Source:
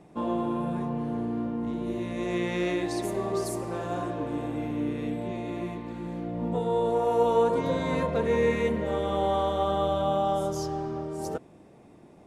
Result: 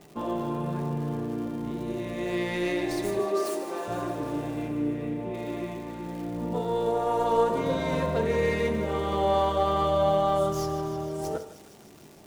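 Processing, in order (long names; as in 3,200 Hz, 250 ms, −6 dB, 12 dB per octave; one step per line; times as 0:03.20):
stylus tracing distortion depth 0.062 ms
0:03.19–0:03.88: high-pass filter 250 Hz 24 dB per octave
surface crackle 250 per second −41 dBFS
0:04.68–0:05.34: high-frequency loss of the air 330 metres
feedback echo with a high-pass in the loop 155 ms, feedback 79%, high-pass 1,100 Hz, level −12 dB
convolution reverb RT60 0.65 s, pre-delay 3 ms, DRR 6.5 dB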